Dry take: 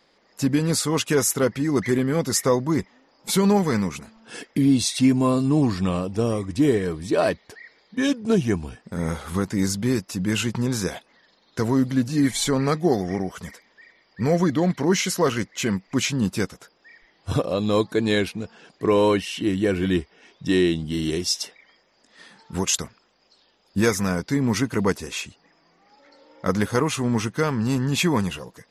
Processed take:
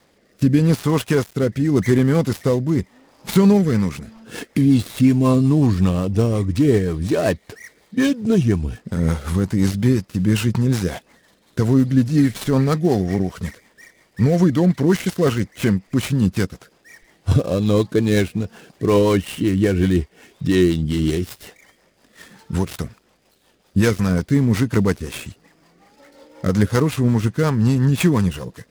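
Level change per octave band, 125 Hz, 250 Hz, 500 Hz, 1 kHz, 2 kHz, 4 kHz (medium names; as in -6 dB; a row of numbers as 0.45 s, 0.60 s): +8.0 dB, +4.5 dB, +2.5 dB, -1.0 dB, +0.5 dB, -3.0 dB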